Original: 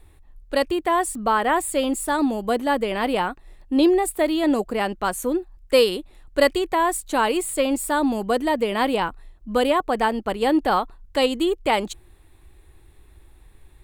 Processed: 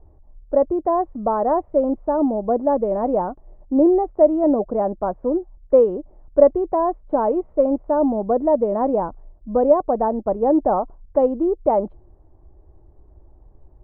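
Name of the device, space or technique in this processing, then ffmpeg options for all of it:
under water: -af "lowpass=f=900:w=0.5412,lowpass=f=900:w=1.3066,equalizer=f=610:t=o:w=0.27:g=8,volume=1.5dB"

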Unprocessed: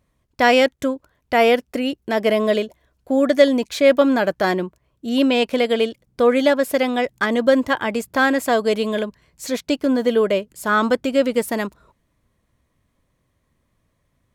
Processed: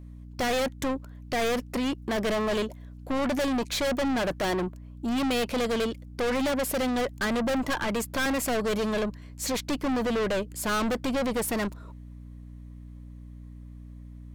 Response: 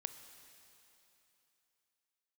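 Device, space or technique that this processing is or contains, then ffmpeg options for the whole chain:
valve amplifier with mains hum: -filter_complex "[0:a]asettb=1/sr,asplit=3[a][b][c];[a]atrim=end=7.664[d];[b]atrim=start=7.66:end=8.26,asetpts=PTS-STARTPTS,afade=t=in:d=0.004:c=qsin,afade=t=out:st=0.596:d=0.004:c=qsin,highpass=f=140:w=0.5412,highpass=f=140:w=1.3066[e];[c]atrim=start=8.256[f];[d][e]acrossfade=d=0.004:c1=hsin:c2=qsin[g];[g][f]acrossfade=d=0.004:c1=qsin:c2=hsin,aeval=exprs='(tanh(25.1*val(0)+0.15)-tanh(0.15))/25.1':c=same,aeval=exprs='val(0)+0.00562*(sin(2*PI*60*n/s)+sin(2*PI*2*60*n/s)/2+sin(2*PI*3*60*n/s)/3+sin(2*PI*4*60*n/s)/4+sin(2*PI*5*60*n/s)/5)':c=same,volume=3dB"

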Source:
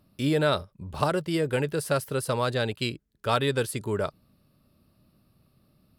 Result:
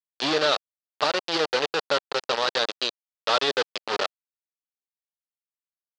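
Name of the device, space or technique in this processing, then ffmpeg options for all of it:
hand-held game console: -af "acrusher=bits=3:mix=0:aa=0.000001,highpass=490,equalizer=f=680:t=q:w=4:g=-4,equalizer=f=1k:t=q:w=4:g=-4,equalizer=f=1.5k:t=q:w=4:g=-3,equalizer=f=2.2k:t=q:w=4:g=-7,equalizer=f=4.5k:t=q:w=4:g=4,lowpass=f=4.9k:w=0.5412,lowpass=f=4.9k:w=1.3066,volume=4.5dB"

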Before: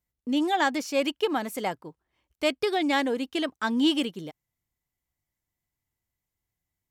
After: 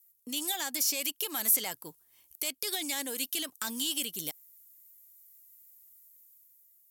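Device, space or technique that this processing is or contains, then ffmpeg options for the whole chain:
FM broadcast chain: -filter_complex "[0:a]highpass=76,dynaudnorm=f=260:g=7:m=6dB,acrossover=split=1200|5700[a][b][c];[a]acompressor=threshold=-33dB:ratio=4[d];[b]acompressor=threshold=-34dB:ratio=4[e];[c]acompressor=threshold=-50dB:ratio=4[f];[d][e][f]amix=inputs=3:normalize=0,aemphasis=mode=production:type=75fm,alimiter=limit=-19.5dB:level=0:latency=1:release=22,asoftclip=type=hard:threshold=-23.5dB,lowpass=f=15k:w=0.5412,lowpass=f=15k:w=1.3066,aemphasis=mode=production:type=75fm,volume=-6.5dB"

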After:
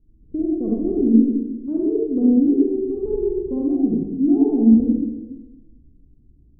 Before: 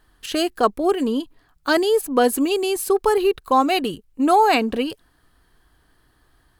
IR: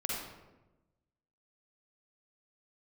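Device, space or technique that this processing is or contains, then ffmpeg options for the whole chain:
next room: -filter_complex "[0:a]lowpass=f=290:w=0.5412,lowpass=f=290:w=1.3066[a];[1:a]atrim=start_sample=2205[b];[a][b]afir=irnorm=-1:irlink=0,volume=4dB"

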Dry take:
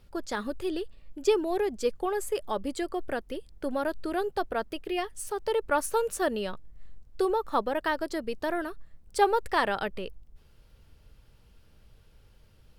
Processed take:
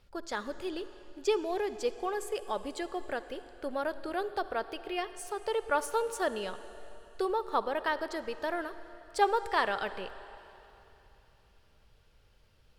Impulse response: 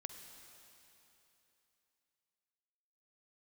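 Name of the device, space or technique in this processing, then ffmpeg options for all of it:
filtered reverb send: -filter_complex "[0:a]asplit=2[a][b];[b]highpass=370,lowpass=8.6k[c];[1:a]atrim=start_sample=2205[d];[c][d]afir=irnorm=-1:irlink=0,volume=2.5dB[e];[a][e]amix=inputs=2:normalize=0,volume=-7dB"

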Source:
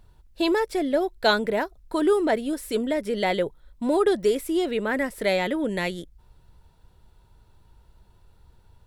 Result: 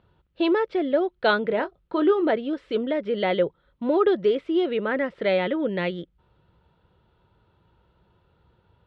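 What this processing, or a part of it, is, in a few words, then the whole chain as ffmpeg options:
guitar cabinet: -filter_complex "[0:a]highpass=84,equalizer=f=170:t=q:w=4:g=5,equalizer=f=350:t=q:w=4:g=4,equalizer=f=520:t=q:w=4:g=6,equalizer=f=1.3k:t=q:w=4:g=6,equalizer=f=3.1k:t=q:w=4:g=4,lowpass=f=3.6k:w=0.5412,lowpass=f=3.6k:w=1.3066,asettb=1/sr,asplit=3[a][b][c];[a]atrim=end=1.484[d];[b]atrim=start=1.48:end=2.3,asetpts=PTS-STARTPTS,afade=t=in:d=0.004:c=qsin,afade=t=out:st=0.816:d=0.004:c=qsin,asplit=2[e][f];[f]adelay=23,volume=-11dB[g];[e][g]amix=inputs=2:normalize=0,atrim=end_sample=36162[h];[c]atrim=start=2.296[i];[d][h]acrossfade=d=0.004:c1=hsin:c2=qsin[j];[j][i]acrossfade=d=0.004:c1=qsin:c2=hsin,volume=-2.5dB"

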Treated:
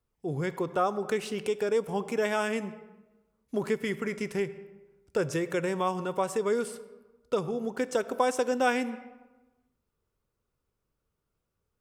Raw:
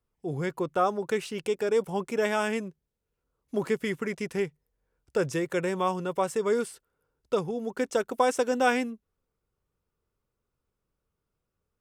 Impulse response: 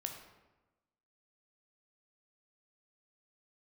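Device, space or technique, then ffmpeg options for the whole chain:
ducked reverb: -filter_complex "[0:a]asplit=3[a][b][c];[1:a]atrim=start_sample=2205[d];[b][d]afir=irnorm=-1:irlink=0[e];[c]apad=whole_len=520472[f];[e][f]sidechaincompress=threshold=-31dB:ratio=8:attack=40:release=176,volume=-2dB[g];[a][g]amix=inputs=2:normalize=0,volume=-3.5dB"

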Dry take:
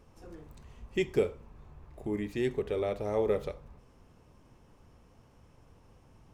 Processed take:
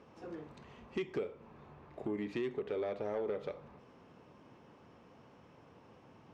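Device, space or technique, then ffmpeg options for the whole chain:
AM radio: -af "highpass=180,lowpass=3.8k,acompressor=threshold=-37dB:ratio=5,asoftclip=type=tanh:threshold=-32.5dB,volume=4.5dB"

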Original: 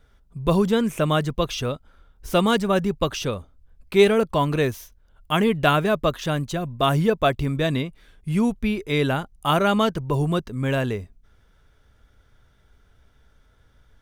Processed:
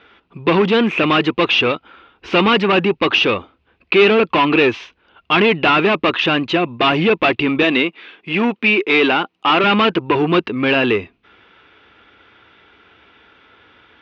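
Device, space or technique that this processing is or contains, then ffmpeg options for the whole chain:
overdrive pedal into a guitar cabinet: -filter_complex "[0:a]asplit=2[a][b];[b]highpass=f=720:p=1,volume=27dB,asoftclip=type=tanh:threshold=-4dB[c];[a][c]amix=inputs=2:normalize=0,lowpass=f=4.1k:p=1,volume=-6dB,highpass=91,equalizer=f=140:t=q:w=4:g=-9,equalizer=f=330:t=q:w=4:g=7,equalizer=f=610:t=q:w=4:g=-7,equalizer=f=1.6k:t=q:w=4:g=-3,equalizer=f=2.6k:t=q:w=4:g=9,lowpass=f=3.7k:w=0.5412,lowpass=f=3.7k:w=1.3066,asettb=1/sr,asplit=3[d][e][f];[d]atrim=end=7.634[g];[e]atrim=start=7.63:end=9.64,asetpts=PTS-STARTPTS,afade=t=in:d=0.004:c=qsin,afade=t=out:st=2.006:d=0.004:c=qsin,highpass=220[h];[f]atrim=start=9.636[i];[g][h]acrossfade=d=0.004:c1=hsin:c2=qsin[j];[j][i]acrossfade=d=0.004:c1=qsin:c2=hsin,volume=-1.5dB"

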